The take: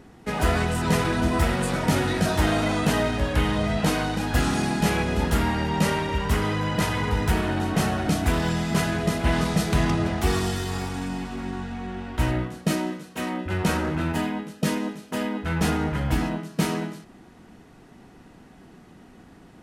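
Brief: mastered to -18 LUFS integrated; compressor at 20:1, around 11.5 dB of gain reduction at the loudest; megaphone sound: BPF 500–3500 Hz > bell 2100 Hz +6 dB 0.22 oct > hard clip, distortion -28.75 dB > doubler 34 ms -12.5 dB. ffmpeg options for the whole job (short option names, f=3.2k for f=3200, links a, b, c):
-filter_complex "[0:a]acompressor=threshold=-28dB:ratio=20,highpass=500,lowpass=3.5k,equalizer=f=2.1k:t=o:w=0.22:g=6,asoftclip=type=hard:threshold=-27.5dB,asplit=2[a][b];[b]adelay=34,volume=-12.5dB[c];[a][c]amix=inputs=2:normalize=0,volume=19.5dB"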